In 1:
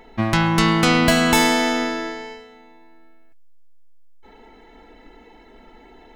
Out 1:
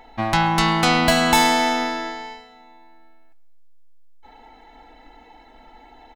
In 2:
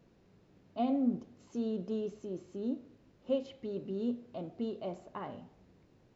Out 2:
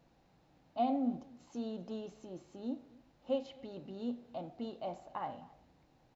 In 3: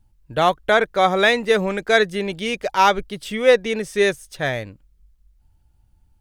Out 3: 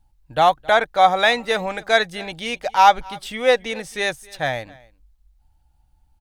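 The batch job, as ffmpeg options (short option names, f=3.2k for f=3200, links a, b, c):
-filter_complex "[0:a]equalizer=f=100:t=o:w=0.33:g=-9,equalizer=f=200:t=o:w=0.33:g=-8,equalizer=f=400:t=o:w=0.33:g=-11,equalizer=f=800:t=o:w=0.33:g=9,equalizer=f=4k:t=o:w=0.33:g=3,asplit=2[a][b];[b]aecho=0:1:267:0.0668[c];[a][c]amix=inputs=2:normalize=0,volume=-1dB"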